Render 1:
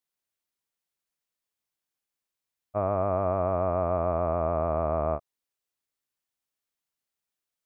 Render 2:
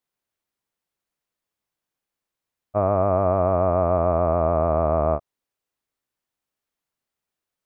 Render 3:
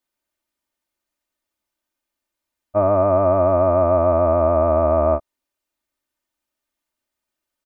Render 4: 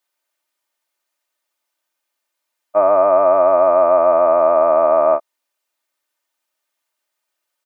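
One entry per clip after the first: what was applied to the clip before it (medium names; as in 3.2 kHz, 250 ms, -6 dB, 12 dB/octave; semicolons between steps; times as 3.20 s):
treble shelf 2.2 kHz -8 dB; trim +7 dB
comb 3.3 ms, depth 76%; trim +1 dB
high-pass 550 Hz 12 dB/octave; trim +6 dB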